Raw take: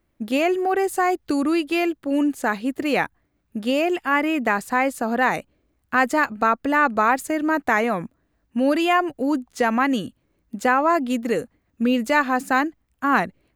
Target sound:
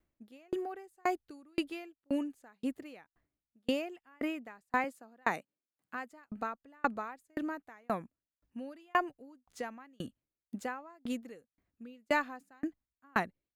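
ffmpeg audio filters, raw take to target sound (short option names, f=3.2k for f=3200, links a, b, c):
-filter_complex "[0:a]asettb=1/sr,asplit=3[a][b][c];[a]atrim=end=4.844[d];[b]atrim=start=4.84:end=6.12,asetpts=PTS-STARTPTS,afade=t=in:d=0.004:c=qsin,afade=t=out:st=1.276:d=0.004:c=qsin,highpass=f=140:w=0.5412,highpass=f=140:w=1.3066[e];[c]atrim=start=6.116[f];[d][e]acrossfade=d=0.004:c1=hsin:c2=qsin[g];[g][f]acrossfade=d=0.004:c1=qsin:c2=hsin,aeval=exprs='val(0)*pow(10,-40*if(lt(mod(1.9*n/s,1),2*abs(1.9)/1000),1-mod(1.9*n/s,1)/(2*abs(1.9)/1000),(mod(1.9*n/s,1)-2*abs(1.9)/1000)/(1-2*abs(1.9)/1000))/20)':c=same,volume=-7dB"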